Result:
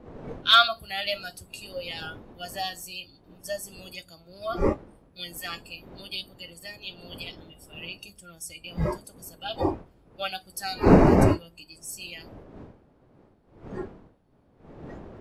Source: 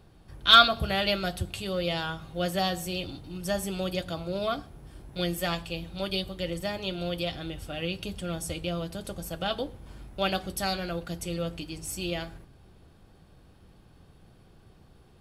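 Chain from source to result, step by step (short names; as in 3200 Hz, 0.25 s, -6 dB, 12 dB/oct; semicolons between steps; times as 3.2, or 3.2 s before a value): wind noise 420 Hz -26 dBFS; spectral noise reduction 17 dB; gain -1 dB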